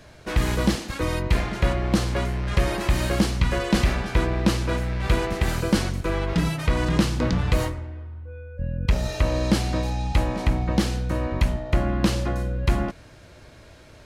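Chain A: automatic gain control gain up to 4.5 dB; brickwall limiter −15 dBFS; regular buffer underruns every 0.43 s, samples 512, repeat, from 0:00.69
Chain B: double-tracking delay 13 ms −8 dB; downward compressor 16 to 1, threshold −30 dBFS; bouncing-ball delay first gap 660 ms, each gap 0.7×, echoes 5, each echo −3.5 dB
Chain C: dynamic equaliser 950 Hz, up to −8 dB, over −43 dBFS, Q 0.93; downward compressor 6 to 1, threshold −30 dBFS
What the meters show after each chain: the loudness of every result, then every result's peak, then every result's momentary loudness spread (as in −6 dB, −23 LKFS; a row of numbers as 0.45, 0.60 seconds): −25.0, −33.5, −35.0 LKFS; −15.0, −16.5, −15.5 dBFS; 7, 3, 4 LU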